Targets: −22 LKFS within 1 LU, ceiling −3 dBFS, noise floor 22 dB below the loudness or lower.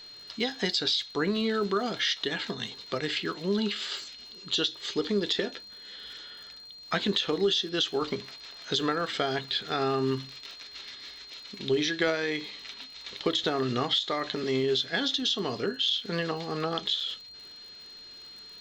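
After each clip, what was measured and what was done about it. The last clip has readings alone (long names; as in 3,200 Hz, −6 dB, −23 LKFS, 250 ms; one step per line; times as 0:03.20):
crackle rate 49 per second; interfering tone 4,200 Hz; level of the tone −45 dBFS; integrated loudness −29.0 LKFS; sample peak −12.5 dBFS; target loudness −22.0 LKFS
→ click removal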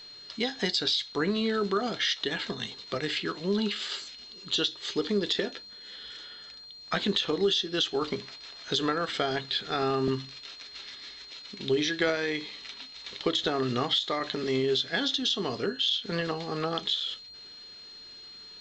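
crackle rate 0.22 per second; interfering tone 4,200 Hz; level of the tone −45 dBFS
→ notch filter 4,200 Hz, Q 30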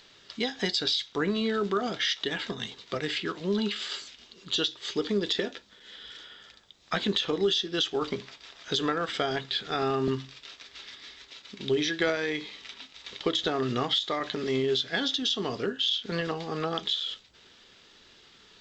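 interfering tone none found; integrated loudness −29.0 LKFS; sample peak −12.5 dBFS; target loudness −22.0 LKFS
→ level +7 dB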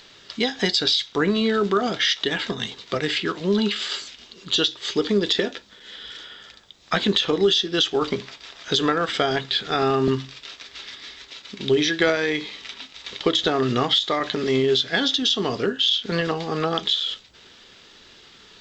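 integrated loudness −22.0 LKFS; sample peak −5.5 dBFS; background noise floor −50 dBFS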